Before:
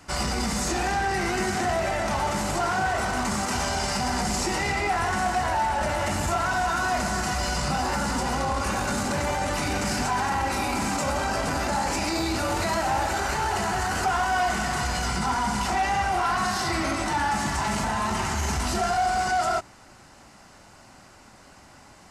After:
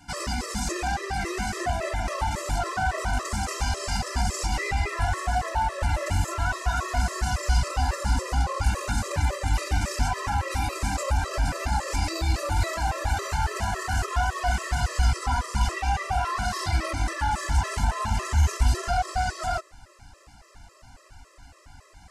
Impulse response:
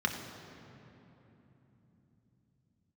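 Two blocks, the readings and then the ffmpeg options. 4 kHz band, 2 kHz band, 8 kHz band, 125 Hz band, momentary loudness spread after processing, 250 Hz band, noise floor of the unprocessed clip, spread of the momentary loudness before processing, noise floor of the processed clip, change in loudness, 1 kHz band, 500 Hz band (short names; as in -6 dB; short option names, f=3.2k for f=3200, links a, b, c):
-3.5 dB, -3.5 dB, -3.5 dB, +5.0 dB, 4 LU, -6.5 dB, -51 dBFS, 2 LU, -55 dBFS, -1.5 dB, -4.0 dB, -4.5 dB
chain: -af "asubboost=boost=7.5:cutoff=71,afftfilt=real='re*gt(sin(2*PI*3.6*pts/sr)*(1-2*mod(floor(b*sr/1024/340),2)),0)':imag='im*gt(sin(2*PI*3.6*pts/sr)*(1-2*mod(floor(b*sr/1024/340),2)),0)':win_size=1024:overlap=0.75"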